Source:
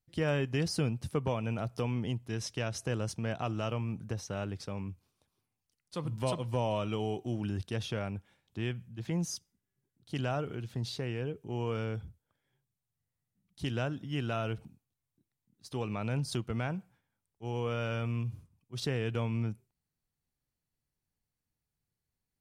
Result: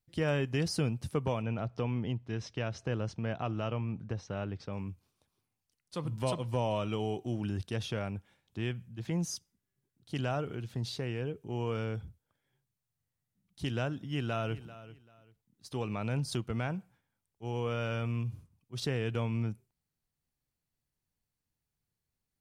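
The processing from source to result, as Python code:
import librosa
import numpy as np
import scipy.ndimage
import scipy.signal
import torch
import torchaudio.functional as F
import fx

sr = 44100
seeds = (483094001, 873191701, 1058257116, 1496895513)

y = fx.air_absorb(x, sr, metres=150.0, at=(1.42, 4.73))
y = fx.echo_throw(y, sr, start_s=14.04, length_s=0.59, ms=390, feedback_pct=25, wet_db=-16.0)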